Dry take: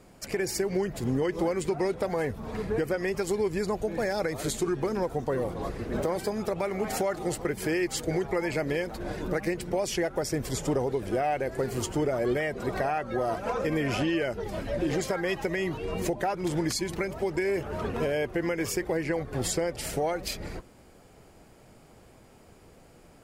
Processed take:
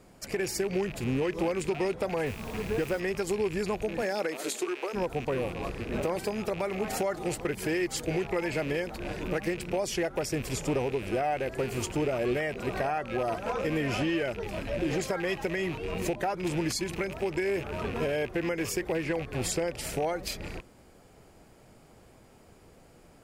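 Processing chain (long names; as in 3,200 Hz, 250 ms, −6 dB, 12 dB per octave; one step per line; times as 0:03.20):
loose part that buzzes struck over −38 dBFS, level −29 dBFS
0:02.25–0:02.99: background noise pink −46 dBFS
0:04.01–0:04.93: high-pass filter 160 Hz → 460 Hz 24 dB per octave
level −1.5 dB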